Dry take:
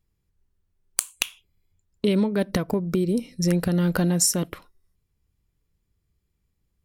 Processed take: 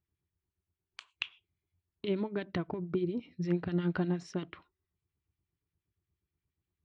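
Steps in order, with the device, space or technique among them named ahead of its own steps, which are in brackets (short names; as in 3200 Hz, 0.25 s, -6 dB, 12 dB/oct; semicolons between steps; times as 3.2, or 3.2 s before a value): guitar amplifier with harmonic tremolo (harmonic tremolo 8.5 Hz, crossover 1400 Hz; soft clip -7 dBFS, distortion -25 dB; speaker cabinet 84–3500 Hz, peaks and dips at 85 Hz +4 dB, 220 Hz -7 dB, 350 Hz +5 dB, 510 Hz -9 dB); gain -5.5 dB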